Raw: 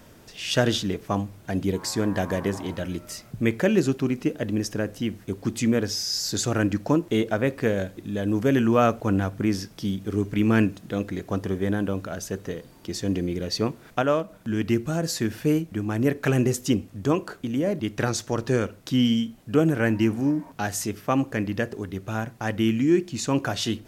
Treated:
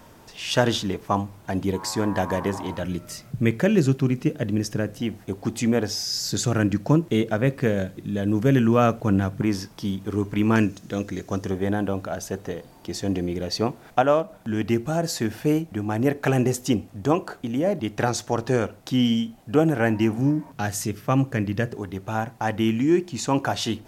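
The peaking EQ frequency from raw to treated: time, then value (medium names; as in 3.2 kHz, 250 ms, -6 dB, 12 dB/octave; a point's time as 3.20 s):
peaking EQ +8.5 dB 0.65 oct
930 Hz
from 2.83 s 140 Hz
from 5.00 s 770 Hz
from 6.05 s 150 Hz
from 9.42 s 950 Hz
from 10.56 s 6.1 kHz
from 11.51 s 770 Hz
from 20.18 s 130 Hz
from 21.76 s 840 Hz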